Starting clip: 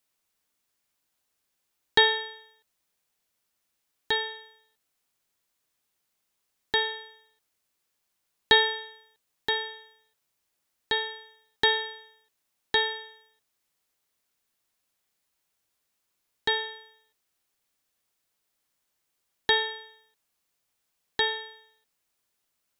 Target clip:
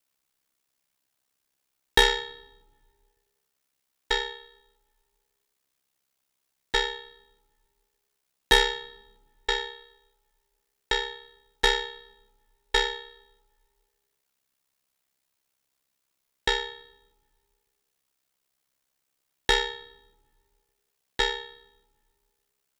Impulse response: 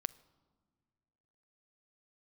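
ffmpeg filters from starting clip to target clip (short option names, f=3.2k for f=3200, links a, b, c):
-filter_complex "[0:a]aeval=exprs='0.596*(cos(1*acos(clip(val(0)/0.596,-1,1)))-cos(1*PI/2))+0.0596*(cos(8*acos(clip(val(0)/0.596,-1,1)))-cos(8*PI/2))':c=same,aeval=exprs='val(0)*sin(2*PI*33*n/s)':c=same,asplit=2[a][b];[1:a]atrim=start_sample=2205[c];[b][c]afir=irnorm=-1:irlink=0,volume=10.5dB[d];[a][d]amix=inputs=2:normalize=0,volume=-9dB"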